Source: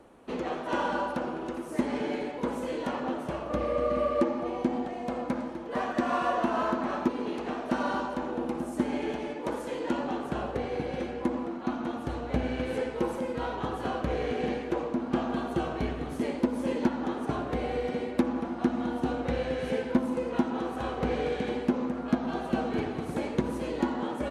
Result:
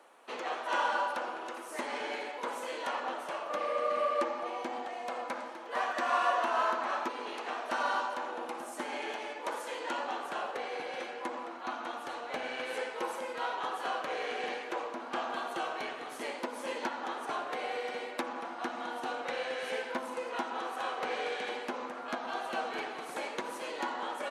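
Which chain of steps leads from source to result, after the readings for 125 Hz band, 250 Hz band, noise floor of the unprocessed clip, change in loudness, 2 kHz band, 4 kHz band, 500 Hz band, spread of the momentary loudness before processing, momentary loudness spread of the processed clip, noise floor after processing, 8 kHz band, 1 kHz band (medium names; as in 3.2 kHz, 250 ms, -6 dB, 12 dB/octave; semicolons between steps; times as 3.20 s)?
under -25 dB, -16.0 dB, -38 dBFS, -4.5 dB, +2.5 dB, +2.5 dB, -6.0 dB, 5 LU, 8 LU, -43 dBFS, +2.5 dB, +0.5 dB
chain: high-pass 800 Hz 12 dB/octave; trim +2.5 dB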